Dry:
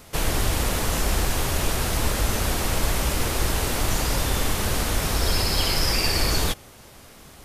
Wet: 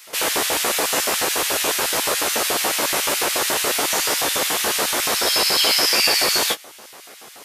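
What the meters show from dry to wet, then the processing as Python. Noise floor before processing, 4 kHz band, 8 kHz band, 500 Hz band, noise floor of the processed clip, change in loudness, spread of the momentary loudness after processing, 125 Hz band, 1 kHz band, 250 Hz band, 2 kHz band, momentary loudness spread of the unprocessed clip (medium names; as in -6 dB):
-47 dBFS, +8.0 dB, +8.0 dB, +4.5 dB, -43 dBFS, +6.0 dB, 4 LU, -18.0 dB, +5.5 dB, -2.0 dB, +7.0 dB, 3 LU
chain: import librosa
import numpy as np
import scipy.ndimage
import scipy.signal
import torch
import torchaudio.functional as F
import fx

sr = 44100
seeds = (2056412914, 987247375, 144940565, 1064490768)

y = fx.room_early_taps(x, sr, ms=(14, 27), db=(-4.0, -11.0))
y = fx.filter_lfo_highpass(y, sr, shape='square', hz=7.0, low_hz=420.0, high_hz=2200.0, q=0.92)
y = y * 10.0 ** (6.0 / 20.0)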